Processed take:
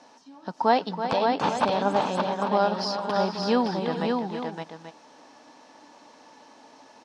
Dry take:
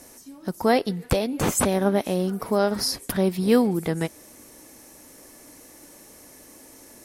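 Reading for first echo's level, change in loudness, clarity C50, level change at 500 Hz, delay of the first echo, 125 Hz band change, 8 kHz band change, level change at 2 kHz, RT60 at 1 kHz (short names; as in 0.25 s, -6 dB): -10.0 dB, -2.0 dB, none, -2.0 dB, 0.328 s, -7.0 dB, -16.0 dB, -0.5 dB, none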